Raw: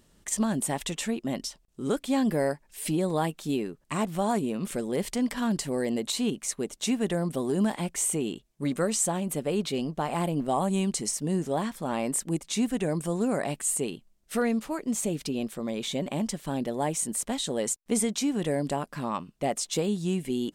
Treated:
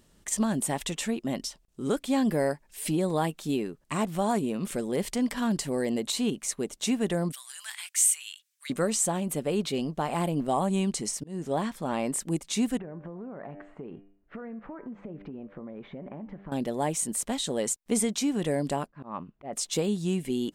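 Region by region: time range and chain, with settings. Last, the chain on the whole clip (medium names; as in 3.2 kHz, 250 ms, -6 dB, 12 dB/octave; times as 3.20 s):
7.32–8.70 s: inverse Chebyshev high-pass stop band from 340 Hz, stop band 70 dB + treble shelf 3.7 kHz +6.5 dB
10.60–12.20 s: treble shelf 8.4 kHz -5.5 dB + slow attack 291 ms
12.77–16.52 s: low-pass 1.8 kHz 24 dB/octave + de-hum 98.68 Hz, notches 30 + compression 8:1, threshold -36 dBFS
18.87–19.53 s: low-pass 1.7 kHz + slow attack 198 ms
whole clip: none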